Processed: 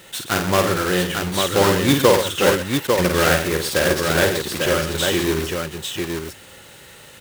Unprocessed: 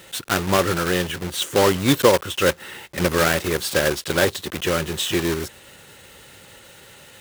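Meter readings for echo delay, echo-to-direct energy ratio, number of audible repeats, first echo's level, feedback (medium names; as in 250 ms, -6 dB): 50 ms, -1.0 dB, 3, -5.5 dB, no regular repeats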